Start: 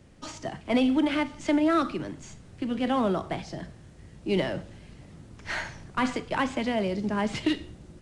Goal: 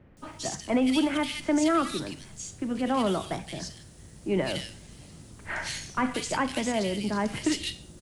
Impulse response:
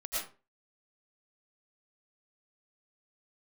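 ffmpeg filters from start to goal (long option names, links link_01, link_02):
-filter_complex "[0:a]aemphasis=mode=production:type=75fm,acrossover=split=2300[link_01][link_02];[link_02]adelay=170[link_03];[link_01][link_03]amix=inputs=2:normalize=0"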